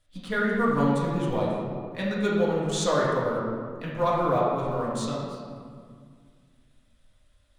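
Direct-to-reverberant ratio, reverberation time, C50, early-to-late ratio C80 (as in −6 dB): −6.0 dB, 2.0 s, −0.5 dB, 1.5 dB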